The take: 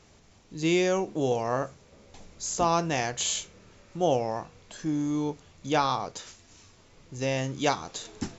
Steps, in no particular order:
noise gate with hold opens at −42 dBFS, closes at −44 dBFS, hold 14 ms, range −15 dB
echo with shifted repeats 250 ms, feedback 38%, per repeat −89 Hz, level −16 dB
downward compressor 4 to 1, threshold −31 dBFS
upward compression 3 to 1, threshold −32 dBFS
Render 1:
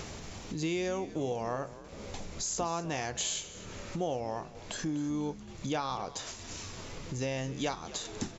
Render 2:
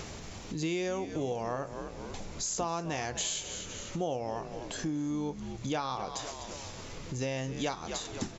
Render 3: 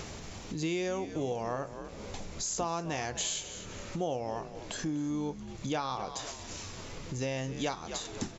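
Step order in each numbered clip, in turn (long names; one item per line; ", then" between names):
upward compression, then noise gate with hold, then downward compressor, then echo with shifted repeats
echo with shifted repeats, then downward compressor, then upward compression, then noise gate with hold
upward compression, then noise gate with hold, then echo with shifted repeats, then downward compressor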